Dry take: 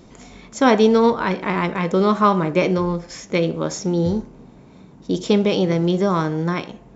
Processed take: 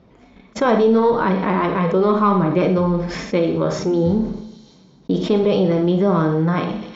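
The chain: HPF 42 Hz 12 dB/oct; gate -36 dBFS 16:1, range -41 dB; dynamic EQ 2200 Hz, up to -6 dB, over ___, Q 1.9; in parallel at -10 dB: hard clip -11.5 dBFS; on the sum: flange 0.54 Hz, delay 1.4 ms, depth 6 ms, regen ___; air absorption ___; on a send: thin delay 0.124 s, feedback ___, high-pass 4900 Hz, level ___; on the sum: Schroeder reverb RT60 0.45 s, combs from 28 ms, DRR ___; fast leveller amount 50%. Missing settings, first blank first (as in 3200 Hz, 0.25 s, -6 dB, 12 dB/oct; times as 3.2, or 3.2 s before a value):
-38 dBFS, -45%, 240 m, 49%, -10 dB, 7 dB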